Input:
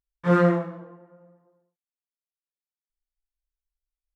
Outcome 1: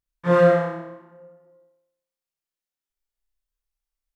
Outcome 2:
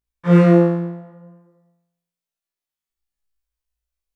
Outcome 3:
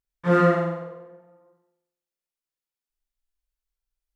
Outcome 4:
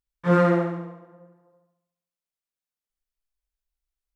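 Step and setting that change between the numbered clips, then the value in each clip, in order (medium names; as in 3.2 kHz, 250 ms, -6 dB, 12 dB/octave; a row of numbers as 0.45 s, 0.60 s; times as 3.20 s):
flutter echo, walls apart: 5.2 m, 3 m, 8.2 m, 12 m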